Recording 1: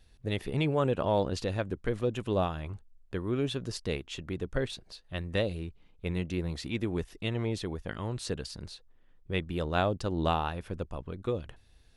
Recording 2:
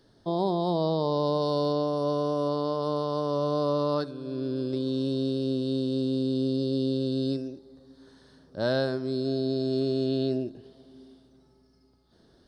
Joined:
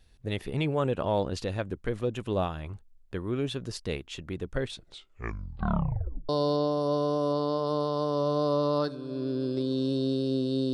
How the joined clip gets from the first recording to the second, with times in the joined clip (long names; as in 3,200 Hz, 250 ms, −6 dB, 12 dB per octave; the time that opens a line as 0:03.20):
recording 1
0:04.69: tape stop 1.60 s
0:06.29: continue with recording 2 from 0:01.45